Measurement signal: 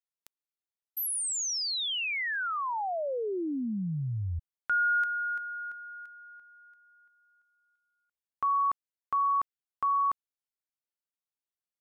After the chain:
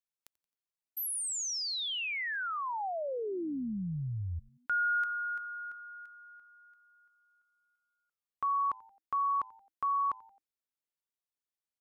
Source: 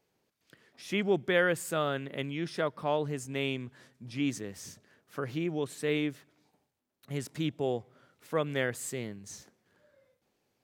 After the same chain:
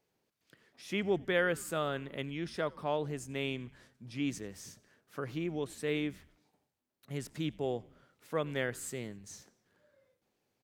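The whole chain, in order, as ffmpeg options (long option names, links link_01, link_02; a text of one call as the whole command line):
ffmpeg -i in.wav -filter_complex "[0:a]asplit=4[link_01][link_02][link_03][link_04];[link_02]adelay=88,afreqshift=-110,volume=-23.5dB[link_05];[link_03]adelay=176,afreqshift=-220,volume=-29.2dB[link_06];[link_04]adelay=264,afreqshift=-330,volume=-34.9dB[link_07];[link_01][link_05][link_06][link_07]amix=inputs=4:normalize=0,volume=-3.5dB" out.wav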